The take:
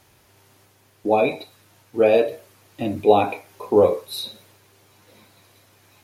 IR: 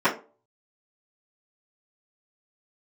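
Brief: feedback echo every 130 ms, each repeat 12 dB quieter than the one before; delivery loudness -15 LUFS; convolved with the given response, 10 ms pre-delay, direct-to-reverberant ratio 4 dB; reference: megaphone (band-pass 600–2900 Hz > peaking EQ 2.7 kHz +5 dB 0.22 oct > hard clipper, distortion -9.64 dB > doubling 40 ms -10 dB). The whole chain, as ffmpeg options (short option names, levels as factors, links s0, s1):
-filter_complex "[0:a]aecho=1:1:130|260|390:0.251|0.0628|0.0157,asplit=2[s0][s1];[1:a]atrim=start_sample=2205,adelay=10[s2];[s1][s2]afir=irnorm=-1:irlink=0,volume=0.0794[s3];[s0][s3]amix=inputs=2:normalize=0,highpass=600,lowpass=2900,equalizer=f=2700:t=o:w=0.22:g=5,asoftclip=type=hard:threshold=0.141,asplit=2[s4][s5];[s5]adelay=40,volume=0.316[s6];[s4][s6]amix=inputs=2:normalize=0,volume=3.35"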